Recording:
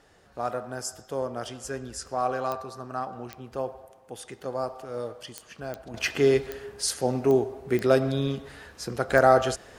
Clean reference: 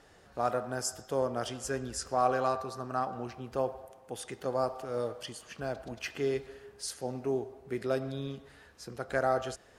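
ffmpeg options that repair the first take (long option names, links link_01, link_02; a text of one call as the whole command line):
ffmpeg -i in.wav -af "adeclick=threshold=4,asetnsamples=nb_out_samples=441:pad=0,asendcmd='5.94 volume volume -10.5dB',volume=0dB" out.wav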